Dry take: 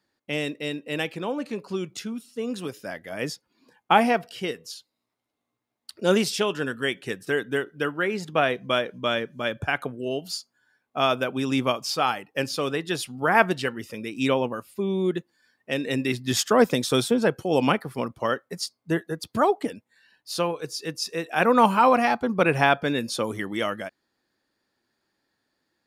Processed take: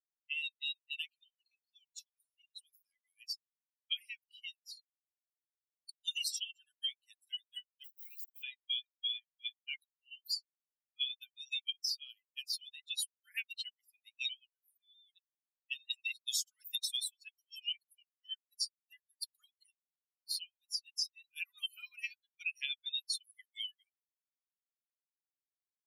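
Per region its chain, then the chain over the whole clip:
0:07.84–0:08.43: downward compressor 8 to 1, threshold −27 dBFS + centre clipping without the shift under −34 dBFS
whole clip: spectral dynamics exaggerated over time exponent 3; Butterworth high-pass 2,900 Hz 48 dB per octave; downward compressor 8 to 1, threshold −46 dBFS; level +12 dB

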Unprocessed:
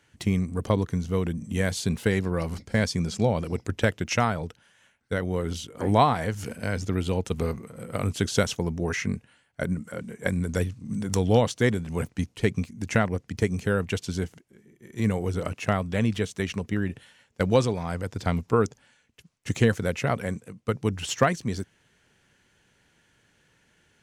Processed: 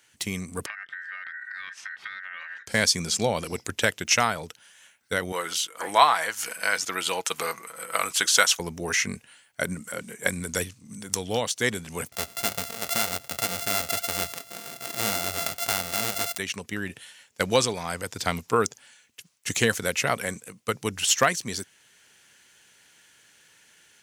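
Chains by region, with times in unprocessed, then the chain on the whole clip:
0:00.66–0:02.67: low-pass filter 1,600 Hz + downward compressor, threshold −38 dBFS + ring modulation 1,700 Hz
0:05.32–0:08.60: high-pass filter 770 Hz 6 dB per octave + parametric band 1,200 Hz +7.5 dB 1.8 octaves + comb filter 6.1 ms, depth 32%
0:12.12–0:16.38: samples sorted by size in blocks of 64 samples + flanger 1.9 Hz, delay 0 ms, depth 6.7 ms, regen −46% + envelope flattener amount 50%
whole clip: spectral tilt +3.5 dB per octave; automatic gain control gain up to 4.5 dB; level −1 dB

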